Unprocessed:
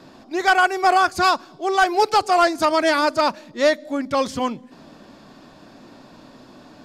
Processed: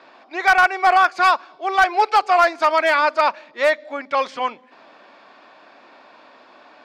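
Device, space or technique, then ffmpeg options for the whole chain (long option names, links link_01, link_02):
megaphone: -af "highpass=690,lowpass=2900,equalizer=frequency=2300:width_type=o:width=0.22:gain=5.5,asoftclip=type=hard:threshold=-11.5dB,volume=4dB"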